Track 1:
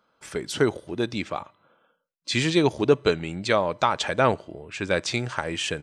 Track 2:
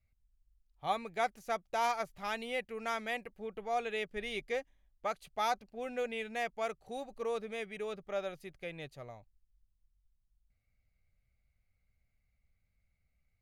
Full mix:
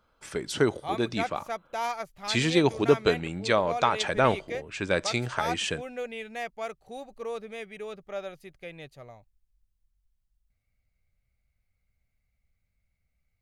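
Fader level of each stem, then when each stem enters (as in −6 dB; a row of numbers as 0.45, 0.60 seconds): −2.0, +1.0 decibels; 0.00, 0.00 seconds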